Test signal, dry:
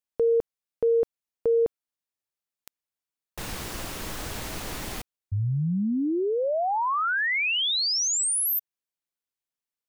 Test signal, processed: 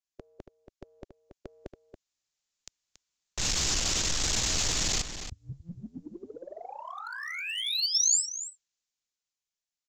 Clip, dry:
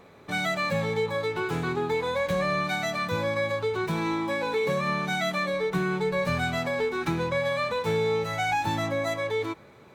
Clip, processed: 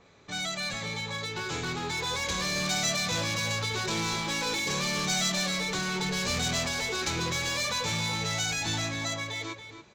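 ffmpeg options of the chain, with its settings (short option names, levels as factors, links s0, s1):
-filter_complex "[0:a]afftfilt=real='re*lt(hypot(re,im),0.316)':imag='im*lt(hypot(re,im),0.316)':win_size=1024:overlap=0.75,lowshelf=f=98:g=9.5,dynaudnorm=f=290:g=13:m=3.16,aresample=16000,asoftclip=type=tanh:threshold=0.112,aresample=44100,crystalizer=i=5:c=0,acrossover=split=760|4400[s0][s1][s2];[s1]asoftclip=type=hard:threshold=0.0501[s3];[s0][s3][s2]amix=inputs=3:normalize=0,asplit=2[s4][s5];[s5]adelay=279.9,volume=0.398,highshelf=f=4000:g=-6.3[s6];[s4][s6]amix=inputs=2:normalize=0,adynamicequalizer=threshold=0.0126:dfrequency=2400:dqfactor=0.7:tfrequency=2400:tqfactor=0.7:attack=5:release=100:ratio=0.4:range=2:mode=boostabove:tftype=highshelf,volume=0.355"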